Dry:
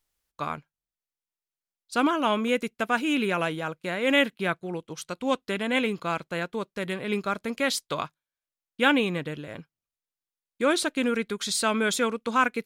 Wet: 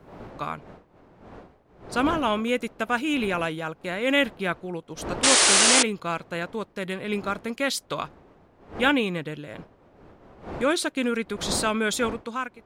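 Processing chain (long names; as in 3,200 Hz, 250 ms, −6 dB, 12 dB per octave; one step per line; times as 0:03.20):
fade-out on the ending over 0.64 s
wind on the microphone 620 Hz −42 dBFS
sound drawn into the spectrogram noise, 0:05.23–0:05.83, 290–10,000 Hz −18 dBFS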